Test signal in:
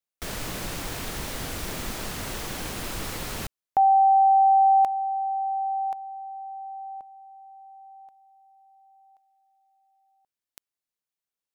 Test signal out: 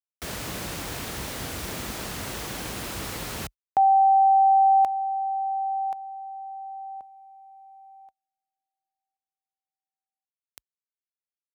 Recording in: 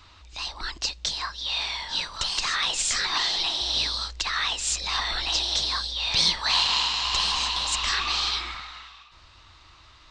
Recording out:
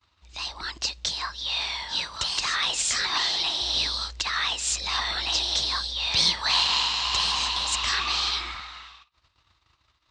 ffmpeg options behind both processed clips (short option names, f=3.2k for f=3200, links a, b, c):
-af "agate=range=-33dB:threshold=-46dB:ratio=3:release=71:detection=rms,highpass=f=45:w=0.5412,highpass=f=45:w=1.3066"